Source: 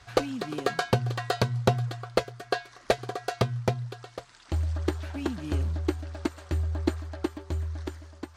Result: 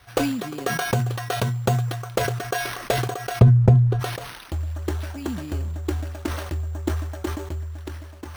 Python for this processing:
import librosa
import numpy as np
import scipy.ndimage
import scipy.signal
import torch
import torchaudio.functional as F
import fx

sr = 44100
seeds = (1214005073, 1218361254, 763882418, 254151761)

y = np.repeat(x[::6], 6)[:len(x)]
y = fx.tilt_eq(y, sr, slope=-4.5, at=(3.39, 3.99), fade=0.02)
y = fx.sustainer(y, sr, db_per_s=45.0)